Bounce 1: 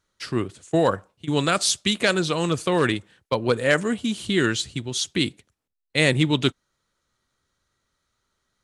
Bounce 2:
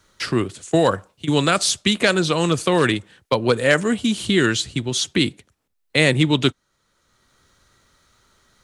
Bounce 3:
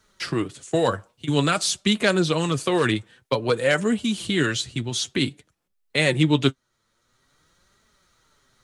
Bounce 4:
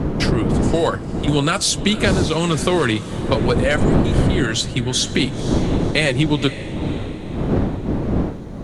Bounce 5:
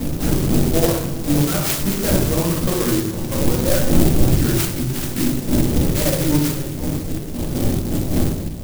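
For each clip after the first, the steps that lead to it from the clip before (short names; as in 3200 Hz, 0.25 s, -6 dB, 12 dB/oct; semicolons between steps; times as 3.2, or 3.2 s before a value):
three-band squash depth 40%; gain +3.5 dB
flange 0.51 Hz, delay 4.5 ms, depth 4.6 ms, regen +43%
wind noise 270 Hz -21 dBFS; compressor 5:1, threshold -21 dBFS, peak gain reduction 15 dB; diffused feedback echo 0.51 s, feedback 43%, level -14 dB; gain +7.5 dB
harmonic tremolo 3.8 Hz, depth 70%, crossover 1700 Hz; shoebox room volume 270 m³, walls mixed, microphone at 2.2 m; clock jitter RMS 0.14 ms; gain -6 dB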